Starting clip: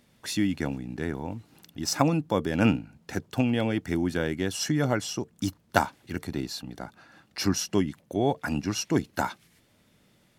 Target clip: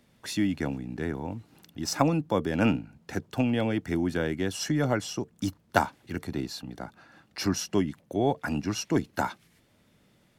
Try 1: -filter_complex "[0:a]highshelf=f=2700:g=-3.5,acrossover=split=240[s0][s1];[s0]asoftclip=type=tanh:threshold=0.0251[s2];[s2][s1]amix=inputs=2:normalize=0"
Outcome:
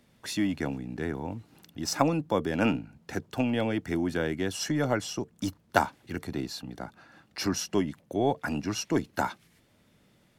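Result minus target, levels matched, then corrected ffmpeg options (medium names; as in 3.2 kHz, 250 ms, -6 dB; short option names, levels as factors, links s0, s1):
saturation: distortion +8 dB
-filter_complex "[0:a]highshelf=f=2700:g=-3.5,acrossover=split=240[s0][s1];[s0]asoftclip=type=tanh:threshold=0.0668[s2];[s2][s1]amix=inputs=2:normalize=0"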